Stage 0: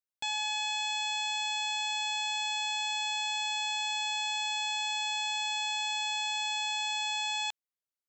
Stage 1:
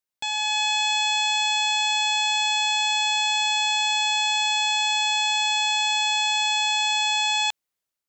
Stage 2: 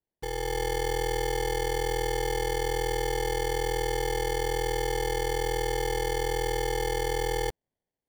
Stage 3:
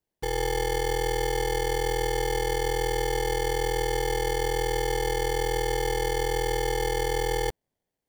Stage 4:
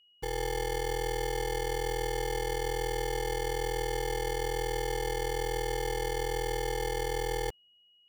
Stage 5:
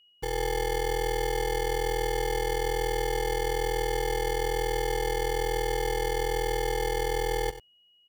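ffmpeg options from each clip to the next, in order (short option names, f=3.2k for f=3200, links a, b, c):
-af "dynaudnorm=f=300:g=3:m=5dB,volume=5dB"
-af "acrusher=samples=34:mix=1:aa=0.000001,volume=-5.5dB"
-af "alimiter=limit=-23.5dB:level=0:latency=1:release=31,volume=4.5dB"
-af "aeval=exprs='val(0)+0.00158*sin(2*PI*2900*n/s)':c=same,volume=-5.5dB"
-af "aecho=1:1:94:0.211,volume=3dB"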